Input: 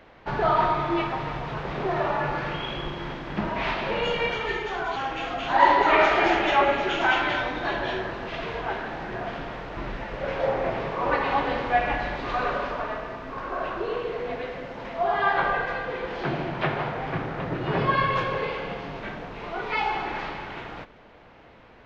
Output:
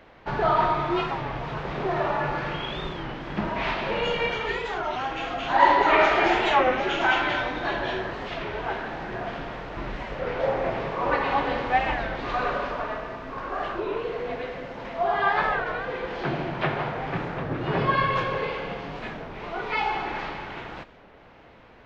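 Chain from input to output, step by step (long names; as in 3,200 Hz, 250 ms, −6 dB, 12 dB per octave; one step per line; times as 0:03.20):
wow of a warped record 33 1/3 rpm, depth 160 cents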